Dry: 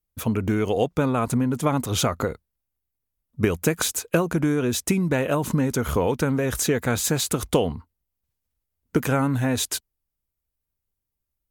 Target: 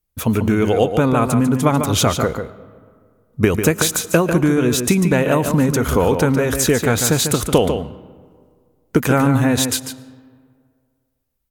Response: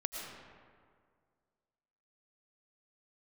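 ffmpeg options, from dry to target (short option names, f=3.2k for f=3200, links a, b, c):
-filter_complex "[0:a]asplit=2[a][b];[b]adelay=145.8,volume=-7dB,highshelf=f=4k:g=-3.28[c];[a][c]amix=inputs=2:normalize=0,asplit=2[d][e];[1:a]atrim=start_sample=2205[f];[e][f]afir=irnorm=-1:irlink=0,volume=-16.5dB[g];[d][g]amix=inputs=2:normalize=0,volume=5dB"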